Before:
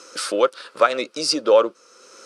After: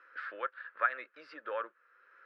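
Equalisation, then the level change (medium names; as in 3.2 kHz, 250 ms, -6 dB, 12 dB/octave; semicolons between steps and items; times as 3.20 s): band-pass filter 1.7 kHz, Q 8.5; distance through air 430 m; +4.5 dB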